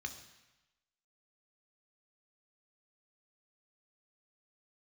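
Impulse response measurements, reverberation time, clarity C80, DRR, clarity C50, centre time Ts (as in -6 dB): 1.0 s, 12.0 dB, 5.5 dB, 10.0 dB, 14 ms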